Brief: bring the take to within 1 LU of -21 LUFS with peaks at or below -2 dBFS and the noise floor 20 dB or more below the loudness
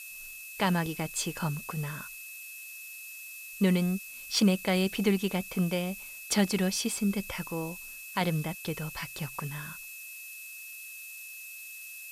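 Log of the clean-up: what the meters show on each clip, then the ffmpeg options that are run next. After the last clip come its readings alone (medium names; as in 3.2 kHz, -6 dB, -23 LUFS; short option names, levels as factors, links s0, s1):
steady tone 2.6 kHz; tone level -44 dBFS; noise floor -45 dBFS; noise floor target -52 dBFS; loudness -32.0 LUFS; peak level -13.0 dBFS; loudness target -21.0 LUFS
-> -af "bandreject=f=2600:w=30"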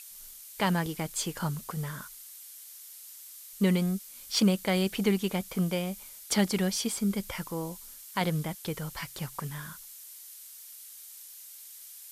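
steady tone not found; noise floor -48 dBFS; noise floor target -51 dBFS
-> -af "afftdn=nr=6:nf=-48"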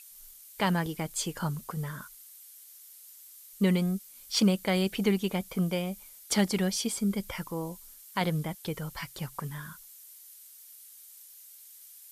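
noise floor -52 dBFS; loudness -30.5 LUFS; peak level -14.0 dBFS; loudness target -21.0 LUFS
-> -af "volume=2.99"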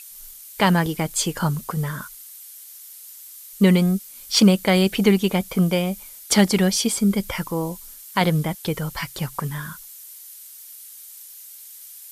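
loudness -21.0 LUFS; peak level -4.5 dBFS; noise floor -42 dBFS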